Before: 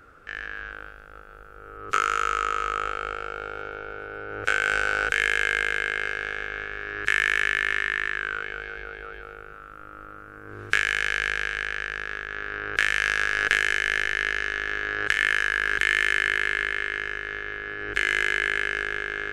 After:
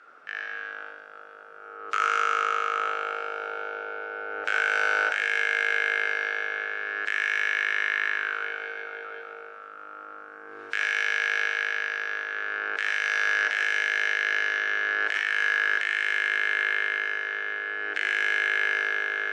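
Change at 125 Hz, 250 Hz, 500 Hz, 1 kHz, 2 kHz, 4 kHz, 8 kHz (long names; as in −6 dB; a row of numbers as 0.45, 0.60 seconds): below −25 dB, can't be measured, −1.0 dB, 0.0 dB, −0.5 dB, −2.5 dB, −6.0 dB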